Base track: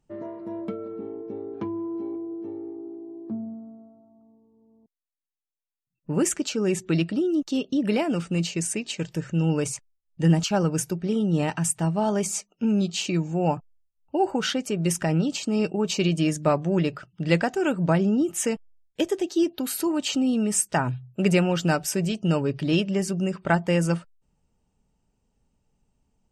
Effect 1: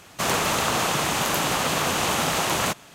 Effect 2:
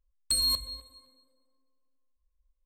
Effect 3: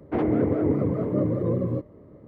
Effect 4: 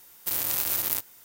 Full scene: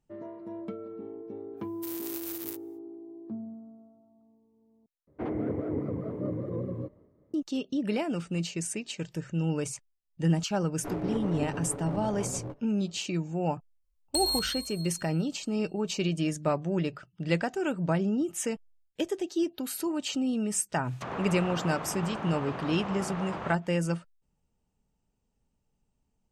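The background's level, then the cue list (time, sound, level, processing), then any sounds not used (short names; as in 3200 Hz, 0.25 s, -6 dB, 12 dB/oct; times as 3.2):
base track -6 dB
1.56 add 4 -11.5 dB, fades 0.05 s + upward expander, over -46 dBFS
5.07 replace with 3 -9 dB + gate with hold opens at -35 dBFS, closes at -48 dBFS, hold 77 ms, range -7 dB
10.72 add 3 -10 dB + minimum comb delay 7 ms
13.84 add 2 -2.5 dB + thin delay 0.141 s, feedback 60%, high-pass 2400 Hz, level -10.5 dB
20.82 add 1 -11 dB, fades 0.10 s + treble ducked by the level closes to 1500 Hz, closed at -24 dBFS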